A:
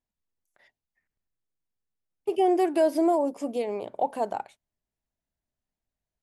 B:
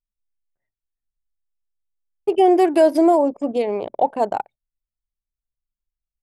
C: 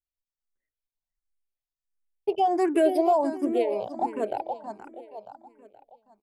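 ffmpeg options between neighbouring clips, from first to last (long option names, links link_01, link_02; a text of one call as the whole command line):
ffmpeg -i in.wav -af "anlmdn=0.631,volume=8dB" out.wav
ffmpeg -i in.wav -filter_complex "[0:a]asplit=2[link_01][link_02];[link_02]aecho=0:1:474|948|1422|1896|2370:0.316|0.139|0.0612|0.0269|0.0119[link_03];[link_01][link_03]amix=inputs=2:normalize=0,asplit=2[link_04][link_05];[link_05]afreqshift=1.4[link_06];[link_04][link_06]amix=inputs=2:normalize=1,volume=-4dB" out.wav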